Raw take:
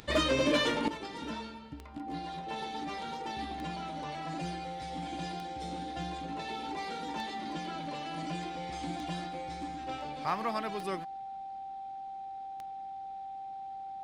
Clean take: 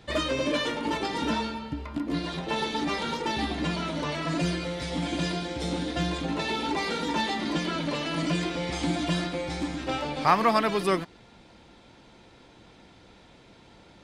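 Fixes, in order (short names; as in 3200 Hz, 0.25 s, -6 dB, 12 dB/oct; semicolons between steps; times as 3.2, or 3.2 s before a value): clip repair -20.5 dBFS; de-click; notch 780 Hz, Q 30; gain correction +11.5 dB, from 0.88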